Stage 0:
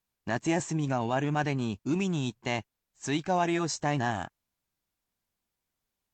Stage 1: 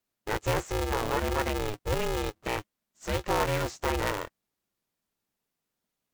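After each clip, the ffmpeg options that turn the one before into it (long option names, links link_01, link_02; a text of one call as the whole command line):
ffmpeg -i in.wav -filter_complex "[0:a]acrossover=split=2600[link_01][link_02];[link_02]acompressor=threshold=-43dB:ratio=4:attack=1:release=60[link_03];[link_01][link_03]amix=inputs=2:normalize=0,aeval=exprs='val(0)*sgn(sin(2*PI*210*n/s))':channel_layout=same" out.wav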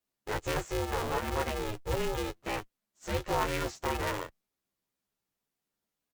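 ffmpeg -i in.wav -filter_complex "[0:a]asplit=2[link_01][link_02];[link_02]adelay=11.8,afreqshift=0.37[link_03];[link_01][link_03]amix=inputs=2:normalize=1" out.wav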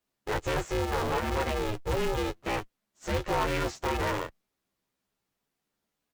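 ffmpeg -i in.wav -af "highshelf=frequency=5600:gain=-6,asoftclip=type=tanh:threshold=-28.5dB,volume=6dB" out.wav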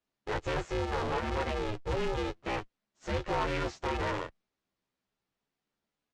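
ffmpeg -i in.wav -af "lowpass=5600,volume=-3dB" out.wav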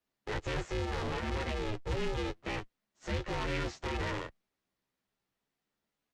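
ffmpeg -i in.wav -filter_complex "[0:a]equalizer=frequency=1900:width_type=o:width=0.2:gain=2.5,acrossover=split=330|1900[link_01][link_02][link_03];[link_02]alimiter=level_in=9.5dB:limit=-24dB:level=0:latency=1,volume=-9.5dB[link_04];[link_01][link_04][link_03]amix=inputs=3:normalize=0" out.wav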